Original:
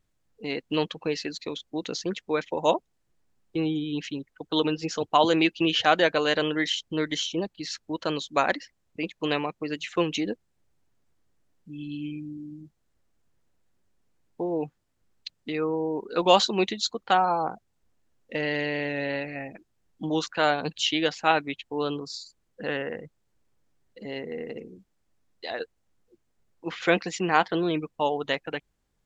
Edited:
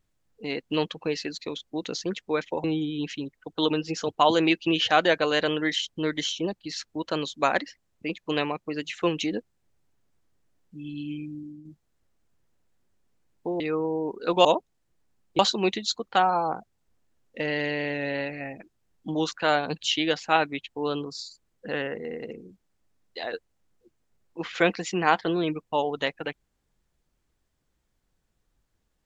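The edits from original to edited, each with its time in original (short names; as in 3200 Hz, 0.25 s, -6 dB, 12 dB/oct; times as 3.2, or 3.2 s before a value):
2.64–3.58 move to 16.34
12.34–12.59 fade out, to -6.5 dB
14.54–15.49 cut
22.91–24.23 cut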